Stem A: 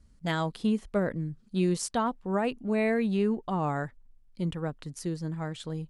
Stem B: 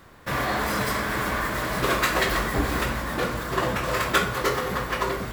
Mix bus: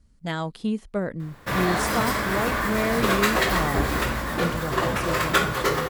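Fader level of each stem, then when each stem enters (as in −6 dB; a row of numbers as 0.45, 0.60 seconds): +0.5, +1.0 decibels; 0.00, 1.20 seconds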